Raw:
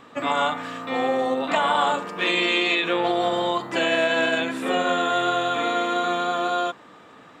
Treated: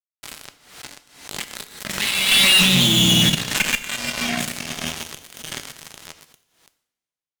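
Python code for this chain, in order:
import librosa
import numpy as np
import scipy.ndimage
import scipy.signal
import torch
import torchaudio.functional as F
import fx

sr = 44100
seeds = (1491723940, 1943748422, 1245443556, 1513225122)

y = fx.doppler_pass(x, sr, speed_mps=30, closest_m=3.8, pass_at_s=2.83)
y = fx.high_shelf(y, sr, hz=5800.0, db=10.5)
y = fx.echo_feedback(y, sr, ms=828, feedback_pct=19, wet_db=-23.0)
y = fx.env_flanger(y, sr, rest_ms=10.1, full_db=-26.5)
y = fx.low_shelf(y, sr, hz=450.0, db=5.0)
y = fx.hum_notches(y, sr, base_hz=50, count=7)
y = fx.doubler(y, sr, ms=21.0, db=-13)
y = fx.level_steps(y, sr, step_db=18)
y = scipy.signal.sosfilt(scipy.signal.ellip(3, 1.0, 40, [230.0, 1800.0], 'bandstop', fs=sr, output='sos'), y)
y = fx.fuzz(y, sr, gain_db=59.0, gate_db=-56.0)
y = fx.rev_double_slope(y, sr, seeds[0], early_s=0.6, late_s=1.9, knee_db=-19, drr_db=9.5)
y = fx.pre_swell(y, sr, db_per_s=86.0)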